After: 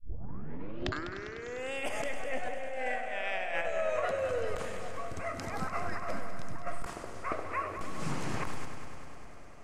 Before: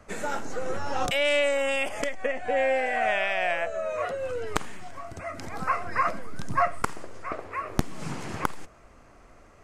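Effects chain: tape start-up on the opening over 1.73 s; compressor with a negative ratio -29 dBFS, ratio -0.5; multi-head delay 100 ms, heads first and second, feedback 73%, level -13 dB; trim -4.5 dB

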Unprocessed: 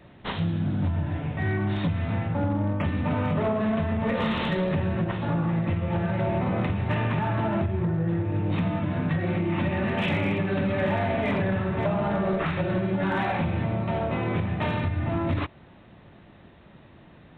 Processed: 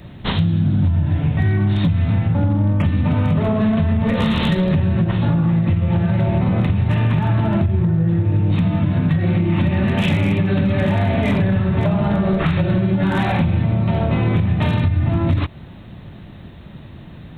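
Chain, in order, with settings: tone controls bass +10 dB, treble +14 dB; compression, threshold -20 dBFS, peak gain reduction 7.5 dB; trim +6.5 dB

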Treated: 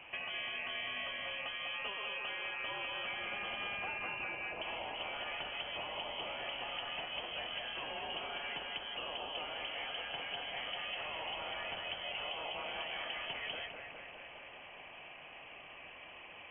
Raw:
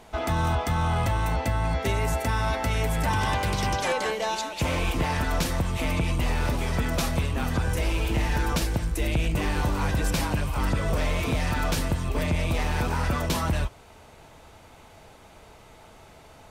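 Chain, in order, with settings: high-pass 140 Hz 12 dB/octave; peaking EQ 2.5 kHz +11.5 dB 0.4 oct; compression, threshold -37 dBFS, peak gain reduction 15.5 dB; distance through air 160 m; on a send: thinning echo 205 ms, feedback 68%, level -4.5 dB; on the sum: frequency inversion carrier 3.2 kHz; trim -2.5 dB

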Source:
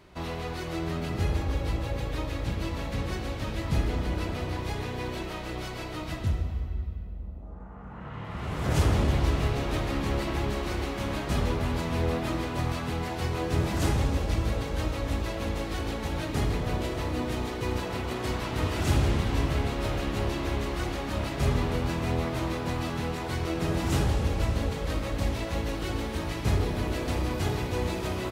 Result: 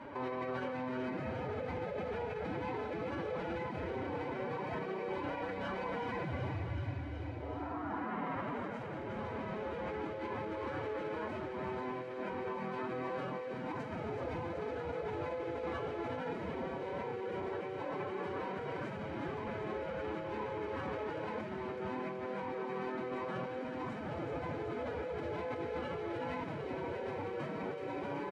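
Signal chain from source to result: three-band isolator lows -20 dB, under 180 Hz, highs -20 dB, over 2.1 kHz; comb 2 ms, depth 38%; compressor with a negative ratio -41 dBFS, ratio -1; peak limiter -33.5 dBFS, peak gain reduction 9 dB; formant-preserving pitch shift +7.5 st; distance through air 54 m; on a send: feedback echo behind a high-pass 376 ms, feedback 76%, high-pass 2.1 kHz, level -5 dB; on the sum: trim +4 dB

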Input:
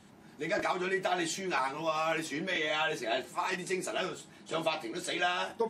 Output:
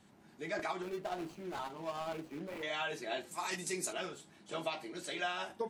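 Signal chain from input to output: 0.82–2.63 s: median filter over 25 samples; 3.31–3.93 s: tone controls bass +3 dB, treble +11 dB; trim -6.5 dB

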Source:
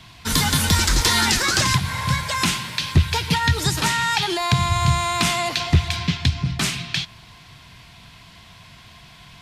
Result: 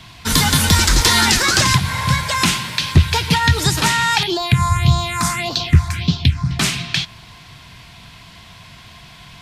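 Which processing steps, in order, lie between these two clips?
4.23–6.51 s: phase shifter stages 4, 1.7 Hz, lowest notch 460–2100 Hz; trim +4.5 dB

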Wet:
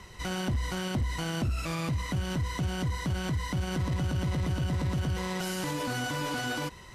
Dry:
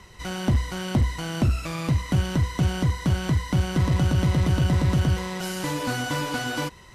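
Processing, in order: peak limiter -24 dBFS, peak gain reduction 9.5 dB

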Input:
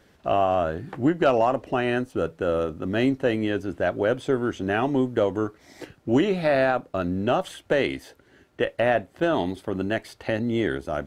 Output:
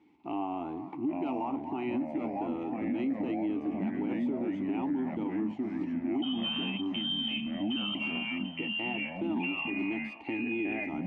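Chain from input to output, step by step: vowel filter u; in parallel at +0.5 dB: compression, threshold -41 dBFS, peak gain reduction 20.5 dB; 6.22–7.95 s: on the sum: frequency inversion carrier 3.4 kHz; on a send: repeats whose band climbs or falls 245 ms, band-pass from 850 Hz, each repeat 0.7 oct, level -9.5 dB; on the sum: ever faster or slower copies 780 ms, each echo -2 st, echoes 3; peak limiter -24.5 dBFS, peak gain reduction 11.5 dB

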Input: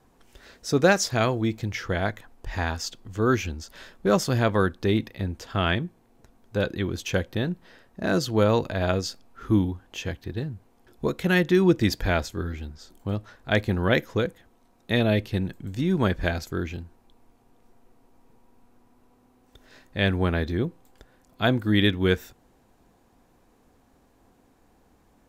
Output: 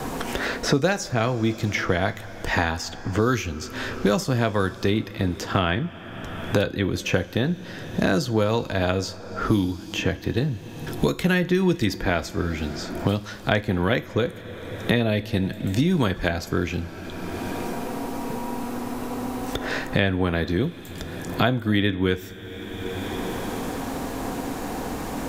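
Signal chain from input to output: two-slope reverb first 0.28 s, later 3 s, from -18 dB, DRR 10.5 dB; three bands compressed up and down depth 100%; trim +1.5 dB

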